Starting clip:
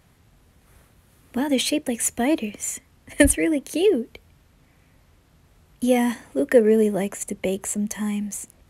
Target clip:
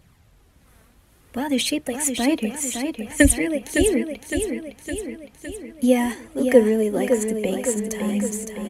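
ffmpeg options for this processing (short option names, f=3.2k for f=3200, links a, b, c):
-af "flanger=delay=0.2:depth=4.4:regen=37:speed=0.61:shape=triangular,aecho=1:1:561|1122|1683|2244|2805|3366|3927:0.473|0.27|0.154|0.0876|0.0499|0.0285|0.0162,volume=4dB"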